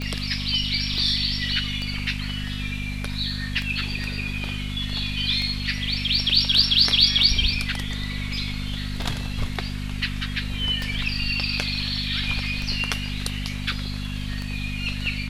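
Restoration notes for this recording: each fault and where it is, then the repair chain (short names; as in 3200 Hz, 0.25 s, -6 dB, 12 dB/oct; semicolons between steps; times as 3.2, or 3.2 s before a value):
hum 50 Hz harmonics 5 -30 dBFS
tick 33 1/3 rpm -16 dBFS
0.98 gap 2 ms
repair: de-click; de-hum 50 Hz, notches 5; interpolate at 0.98, 2 ms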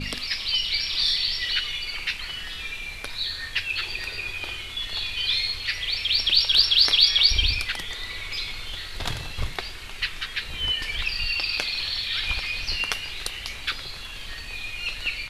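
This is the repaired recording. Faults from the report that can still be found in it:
none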